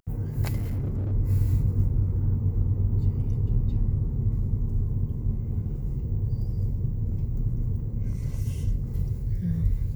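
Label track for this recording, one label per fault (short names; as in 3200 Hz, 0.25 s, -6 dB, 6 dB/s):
0.560000	1.130000	clipped -25 dBFS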